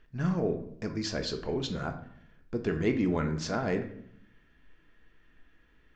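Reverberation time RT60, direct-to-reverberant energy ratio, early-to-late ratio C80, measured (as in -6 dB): 0.70 s, 5.0 dB, 13.5 dB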